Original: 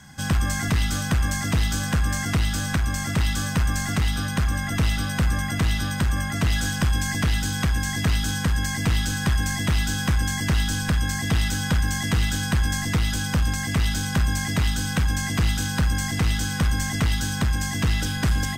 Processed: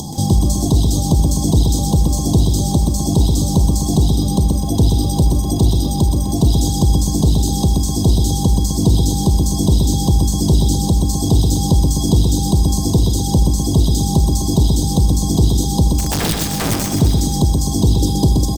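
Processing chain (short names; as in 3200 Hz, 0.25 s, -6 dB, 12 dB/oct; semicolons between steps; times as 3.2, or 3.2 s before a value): reverb removal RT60 1.4 s; upward compressor, threshold -22 dBFS; elliptic band-stop 890–3700 Hz, stop band 40 dB; bell 360 Hz +11.5 dB 0.72 oct; 15.93–16.92 wrapped overs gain 21 dB; dynamic EQ 120 Hz, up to +5 dB, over -32 dBFS, Q 0.86; on a send: echo 75 ms -18 dB; on the sum: maximiser +9.5 dB; lo-fi delay 0.126 s, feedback 55%, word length 7-bit, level -4.5 dB; gain -3 dB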